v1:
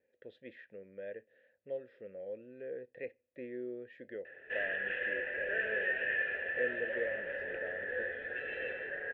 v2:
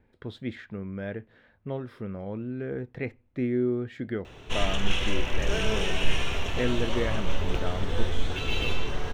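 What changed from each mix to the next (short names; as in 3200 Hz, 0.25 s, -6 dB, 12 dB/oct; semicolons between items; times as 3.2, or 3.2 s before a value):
background: remove synth low-pass 1700 Hz, resonance Q 11; master: remove vowel filter e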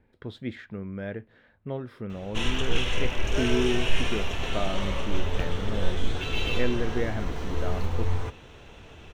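background: entry -2.15 s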